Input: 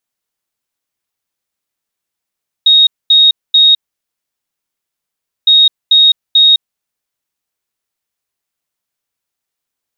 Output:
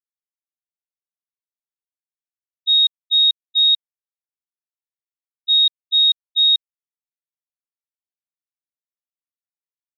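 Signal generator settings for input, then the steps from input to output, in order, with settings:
beeps in groups sine 3,750 Hz, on 0.21 s, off 0.23 s, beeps 3, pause 1.72 s, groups 2, −3.5 dBFS
noise gate −7 dBFS, range −39 dB
dynamic equaliser 3,500 Hz, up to −4 dB, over −28 dBFS

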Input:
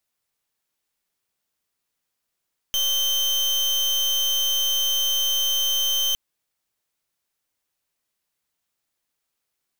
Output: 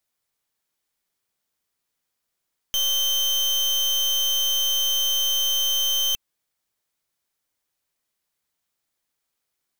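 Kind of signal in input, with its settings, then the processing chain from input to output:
pulse wave 3,110 Hz, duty 34% −22 dBFS 3.41 s
notch filter 2,700 Hz, Q 25

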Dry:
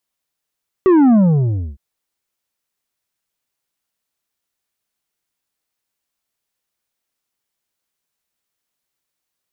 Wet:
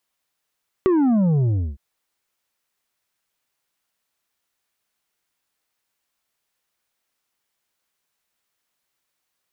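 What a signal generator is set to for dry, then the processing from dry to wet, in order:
bass drop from 390 Hz, over 0.91 s, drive 7 dB, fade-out 0.63 s, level −8.5 dB
high-shelf EQ 2,300 Hz −9 dB
downward compressor, threshold −17 dBFS
one half of a high-frequency compander encoder only

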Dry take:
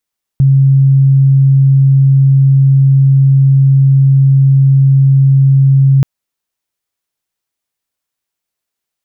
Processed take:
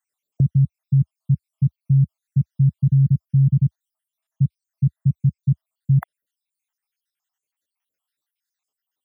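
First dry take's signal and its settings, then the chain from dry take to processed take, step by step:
tone sine 136 Hz −4 dBFS 5.63 s
time-frequency cells dropped at random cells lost 73%
high-pass filter 75 Hz 24 dB per octave
parametric band 120 Hz −7 dB 1.2 octaves

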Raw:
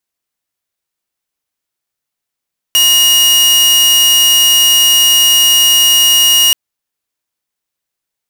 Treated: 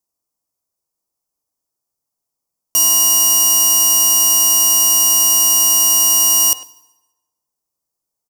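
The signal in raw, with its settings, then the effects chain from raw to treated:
tone saw 2,870 Hz −3.5 dBFS 3.78 s
flat-topped bell 2,400 Hz −16 dB
far-end echo of a speakerphone 100 ms, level −11 dB
feedback delay network reverb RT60 1.2 s, low-frequency decay 0.75×, high-frequency decay 0.75×, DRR 16 dB

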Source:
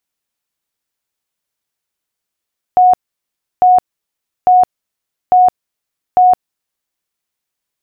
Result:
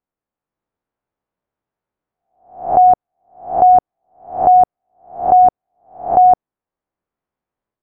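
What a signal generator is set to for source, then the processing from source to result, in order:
tone bursts 731 Hz, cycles 121, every 0.85 s, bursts 5, −4.5 dBFS
peak hold with a rise ahead of every peak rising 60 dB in 0.44 s
low-pass filter 1,000 Hz 12 dB per octave
automatic gain control gain up to 5 dB

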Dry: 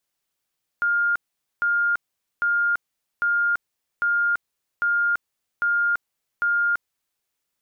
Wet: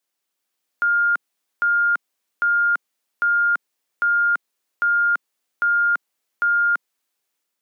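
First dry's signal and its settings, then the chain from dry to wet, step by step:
tone bursts 1,410 Hz, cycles 474, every 0.80 s, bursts 8, −18 dBFS
high-pass filter 200 Hz 24 dB per octave
automatic gain control gain up to 3 dB

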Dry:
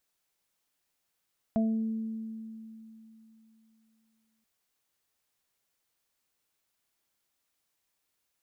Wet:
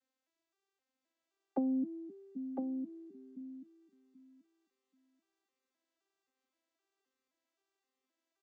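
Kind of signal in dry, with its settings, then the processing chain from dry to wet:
harmonic partials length 2.88 s, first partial 222 Hz, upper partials −17/−4.5 dB, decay 3.26 s, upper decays 1.61/0.38 s, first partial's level −23 dB
vocoder with an arpeggio as carrier major triad, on C4, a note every 261 ms
downward compressor, threshold −30 dBFS
on a send: single-tap delay 1,007 ms −5.5 dB

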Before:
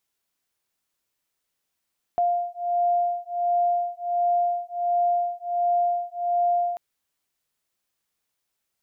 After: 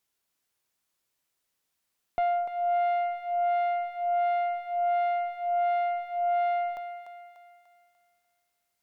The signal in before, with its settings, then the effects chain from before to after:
two tones that beat 700 Hz, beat 1.4 Hz, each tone −24 dBFS 4.59 s
tube saturation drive 22 dB, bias 0.3
on a send: feedback echo with a high-pass in the loop 295 ms, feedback 49%, high-pass 500 Hz, level −8 dB

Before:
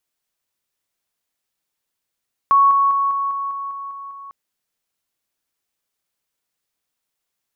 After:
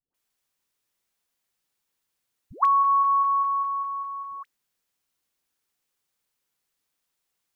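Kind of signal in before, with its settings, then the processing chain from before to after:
level staircase 1,110 Hz −9.5 dBFS, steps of −3 dB, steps 9, 0.20 s 0.00 s
notch filter 640 Hz, Q 12
downward compressor, threshold −18 dBFS
all-pass dispersion highs, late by 145 ms, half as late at 540 Hz

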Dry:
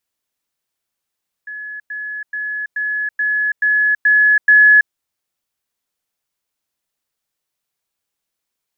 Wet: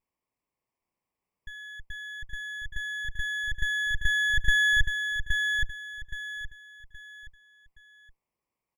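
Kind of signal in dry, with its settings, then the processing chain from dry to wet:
level staircase 1,700 Hz −26.5 dBFS, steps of 3 dB, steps 8, 0.33 s 0.10 s
lower of the sound and its delayed copy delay 0.39 ms
drawn EQ curve 720 Hz 0 dB, 1,100 Hz +10 dB, 1,500 Hz −9 dB, 2,200 Hz −3 dB, 3,100 Hz −14 dB
on a send: repeating echo 821 ms, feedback 32%, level −5 dB

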